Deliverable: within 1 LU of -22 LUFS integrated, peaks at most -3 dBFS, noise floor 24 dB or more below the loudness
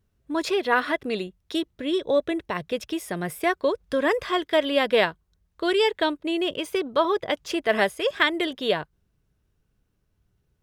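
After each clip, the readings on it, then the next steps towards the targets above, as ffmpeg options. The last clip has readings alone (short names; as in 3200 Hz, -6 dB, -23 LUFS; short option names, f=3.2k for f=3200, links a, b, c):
loudness -25.0 LUFS; peak -5.0 dBFS; loudness target -22.0 LUFS
-> -af "volume=3dB,alimiter=limit=-3dB:level=0:latency=1"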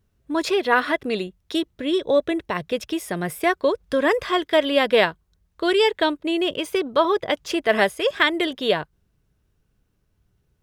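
loudness -22.0 LUFS; peak -3.0 dBFS; noise floor -69 dBFS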